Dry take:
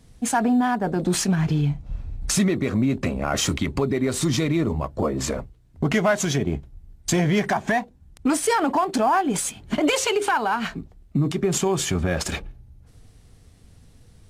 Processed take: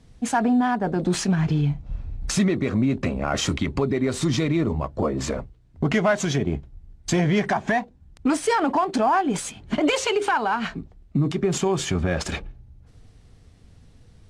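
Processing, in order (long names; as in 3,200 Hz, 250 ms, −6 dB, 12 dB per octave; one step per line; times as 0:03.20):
high-frequency loss of the air 55 metres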